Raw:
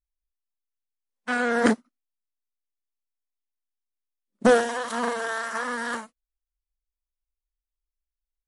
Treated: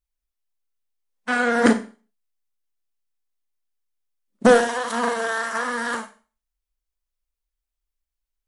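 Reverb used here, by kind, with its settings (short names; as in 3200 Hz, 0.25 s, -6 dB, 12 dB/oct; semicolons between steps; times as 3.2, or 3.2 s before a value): Schroeder reverb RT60 0.36 s, combs from 31 ms, DRR 10 dB; gain +3.5 dB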